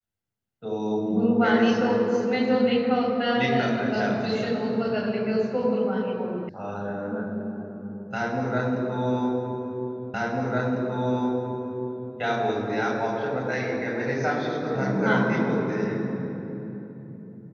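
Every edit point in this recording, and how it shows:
6.49 sound cut off
10.14 repeat of the last 2 s

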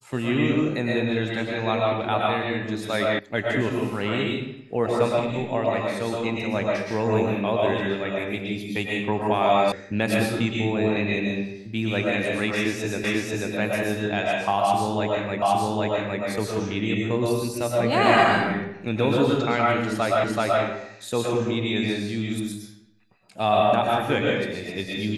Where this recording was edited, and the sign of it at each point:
3.19 sound cut off
9.72 sound cut off
13.04 repeat of the last 0.49 s
15.42 repeat of the last 0.81 s
20.24 repeat of the last 0.38 s

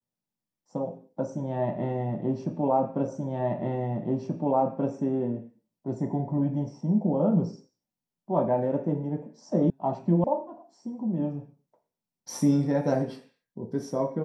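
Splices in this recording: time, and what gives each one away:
3.08 repeat of the last 1.83 s
9.7 sound cut off
10.24 sound cut off

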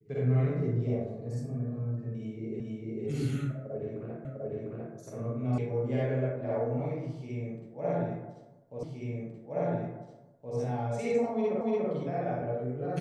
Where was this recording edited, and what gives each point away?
2.6 repeat of the last 0.45 s
4.25 repeat of the last 0.7 s
5.58 sound cut off
8.83 repeat of the last 1.72 s
11.61 repeat of the last 0.29 s

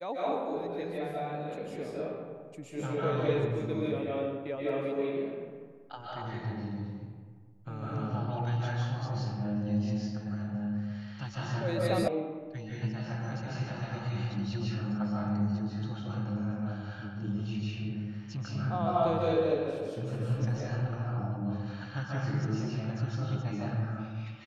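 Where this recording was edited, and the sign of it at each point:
12.08 sound cut off

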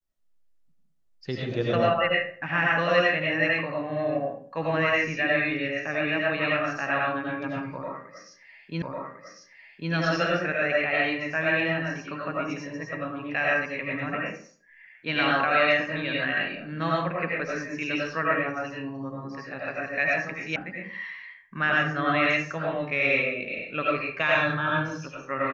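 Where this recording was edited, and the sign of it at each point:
8.82 repeat of the last 1.1 s
20.56 sound cut off

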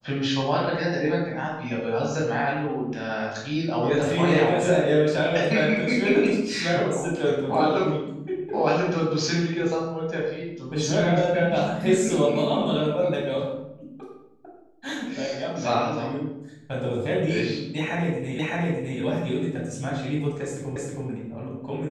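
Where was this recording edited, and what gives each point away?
18.39 repeat of the last 0.61 s
20.76 repeat of the last 0.32 s

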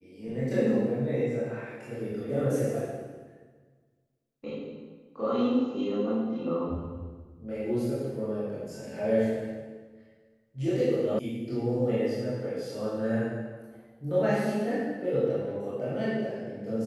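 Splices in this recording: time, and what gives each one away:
11.19 sound cut off

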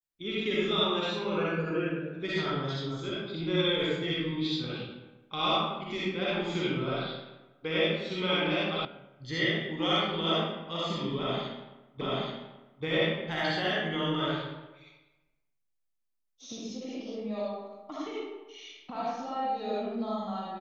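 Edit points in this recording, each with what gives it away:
8.85 sound cut off
12.01 repeat of the last 0.83 s

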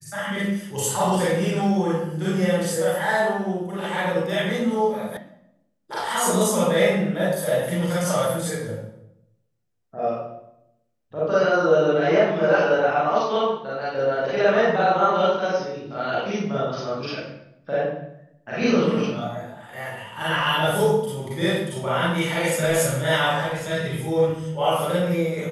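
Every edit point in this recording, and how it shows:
5.17 sound cut off

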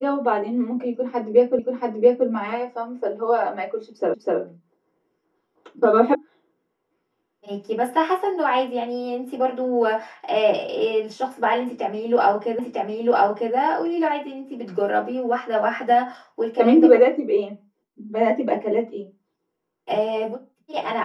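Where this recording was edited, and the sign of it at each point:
1.59 repeat of the last 0.68 s
4.14 repeat of the last 0.25 s
6.15 sound cut off
12.59 repeat of the last 0.95 s

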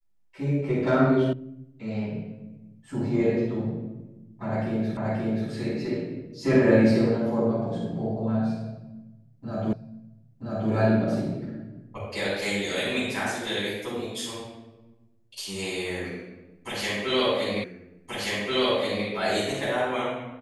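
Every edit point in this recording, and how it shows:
1.33 sound cut off
4.97 repeat of the last 0.53 s
9.73 repeat of the last 0.98 s
17.64 repeat of the last 1.43 s

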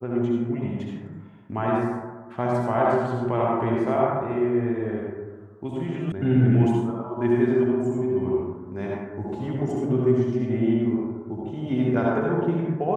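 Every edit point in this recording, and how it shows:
6.12 sound cut off

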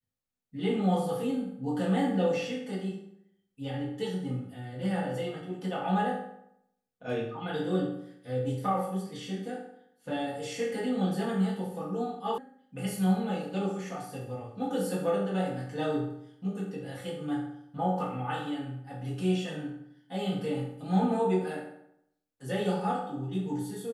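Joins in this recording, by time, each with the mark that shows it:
12.38 sound cut off

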